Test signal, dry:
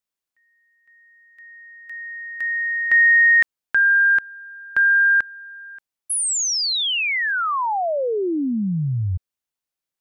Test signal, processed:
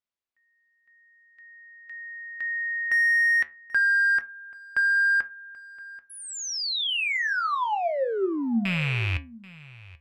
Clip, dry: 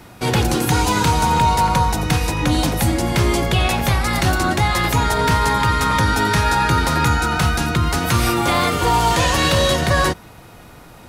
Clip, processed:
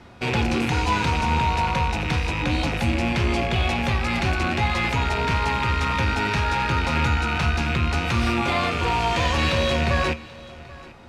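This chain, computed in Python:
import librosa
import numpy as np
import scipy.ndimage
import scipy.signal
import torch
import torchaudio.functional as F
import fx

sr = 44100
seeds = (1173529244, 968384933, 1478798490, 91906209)

p1 = fx.rattle_buzz(x, sr, strikes_db=-29.0, level_db=-11.0)
p2 = scipy.signal.sosfilt(scipy.signal.butter(2, 4800.0, 'lowpass', fs=sr, output='sos'), p1)
p3 = np.clip(p2, -10.0 ** (-19.5 / 20.0), 10.0 ** (-19.5 / 20.0))
p4 = p2 + (p3 * 10.0 ** (-7.0 / 20.0))
p5 = fx.comb_fb(p4, sr, f0_hz=77.0, decay_s=0.29, harmonics='odd', damping=0.4, mix_pct=70)
y = p5 + 10.0 ** (-20.5 / 20.0) * np.pad(p5, (int(784 * sr / 1000.0), 0))[:len(p5)]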